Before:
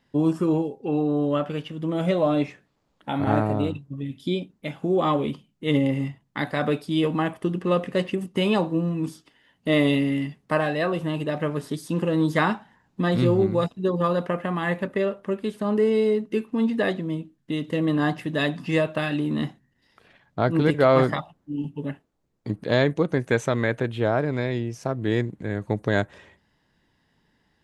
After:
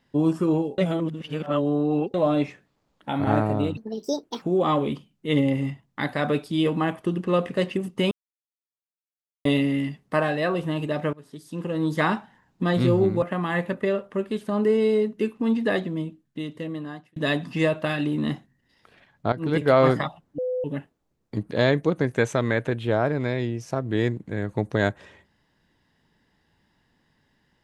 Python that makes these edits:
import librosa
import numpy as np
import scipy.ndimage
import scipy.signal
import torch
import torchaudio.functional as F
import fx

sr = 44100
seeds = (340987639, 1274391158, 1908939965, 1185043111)

y = fx.edit(x, sr, fx.reverse_span(start_s=0.78, length_s=1.36),
    fx.speed_span(start_s=3.77, length_s=1.03, speed=1.58),
    fx.silence(start_s=8.49, length_s=1.34),
    fx.fade_in_from(start_s=11.51, length_s=1.04, floor_db=-23.0),
    fx.cut(start_s=13.6, length_s=0.75),
    fx.fade_out_span(start_s=17.04, length_s=1.25),
    fx.fade_in_from(start_s=20.45, length_s=0.35, floor_db=-14.0),
    fx.bleep(start_s=21.51, length_s=0.26, hz=505.0, db=-23.5), tone=tone)